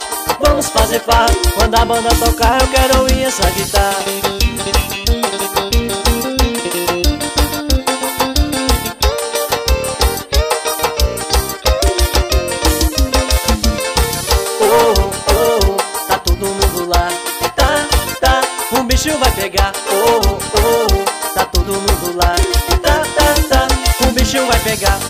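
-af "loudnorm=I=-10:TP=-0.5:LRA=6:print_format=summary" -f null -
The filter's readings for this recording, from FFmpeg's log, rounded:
Input Integrated:    -13.9 LUFS
Input True Peak:      -2.4 dBTP
Input LRA:             3.1 LU
Input Threshold:     -23.9 LUFS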